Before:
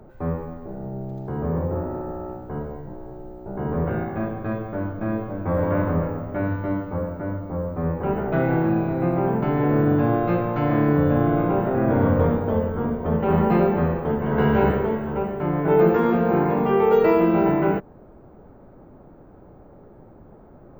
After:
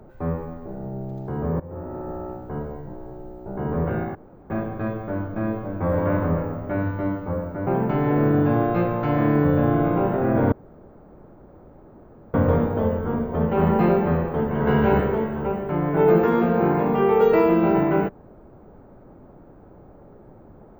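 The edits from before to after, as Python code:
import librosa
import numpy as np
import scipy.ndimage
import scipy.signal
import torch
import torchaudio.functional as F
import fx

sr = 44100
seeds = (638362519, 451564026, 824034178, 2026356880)

y = fx.edit(x, sr, fx.fade_in_from(start_s=1.6, length_s=0.54, floor_db=-18.0),
    fx.insert_room_tone(at_s=4.15, length_s=0.35),
    fx.cut(start_s=7.32, length_s=1.88),
    fx.insert_room_tone(at_s=12.05, length_s=1.82), tone=tone)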